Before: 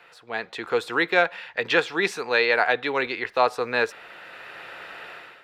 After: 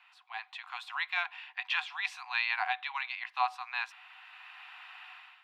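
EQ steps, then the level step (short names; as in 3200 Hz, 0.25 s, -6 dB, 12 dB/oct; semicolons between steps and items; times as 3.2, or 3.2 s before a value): rippled Chebyshev high-pass 730 Hz, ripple 9 dB; high shelf 4500 Hz -5 dB; -3.5 dB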